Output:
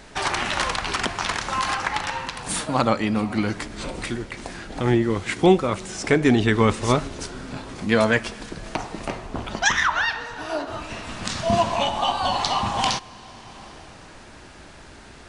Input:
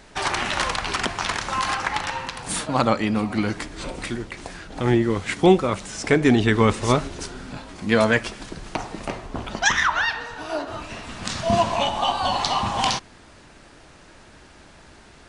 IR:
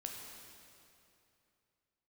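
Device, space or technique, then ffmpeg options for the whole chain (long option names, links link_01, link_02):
ducked reverb: -filter_complex "[0:a]asplit=3[link_01][link_02][link_03];[1:a]atrim=start_sample=2205[link_04];[link_02][link_04]afir=irnorm=-1:irlink=0[link_05];[link_03]apad=whole_len=673917[link_06];[link_05][link_06]sidechaincompress=threshold=-36dB:ratio=8:attack=24:release=582,volume=0dB[link_07];[link_01][link_07]amix=inputs=2:normalize=0,volume=-1dB"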